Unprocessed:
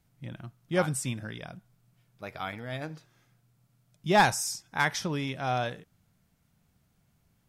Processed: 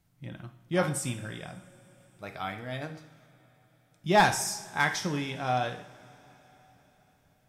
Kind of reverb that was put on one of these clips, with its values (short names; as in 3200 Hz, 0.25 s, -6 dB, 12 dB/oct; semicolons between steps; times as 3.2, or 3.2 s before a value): two-slope reverb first 0.55 s, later 4.7 s, from -21 dB, DRR 5.5 dB; gain -1 dB